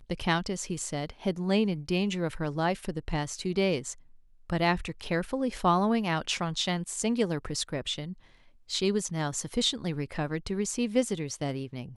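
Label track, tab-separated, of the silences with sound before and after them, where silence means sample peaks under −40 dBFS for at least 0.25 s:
3.930000	4.500000	silence
8.130000	8.700000	silence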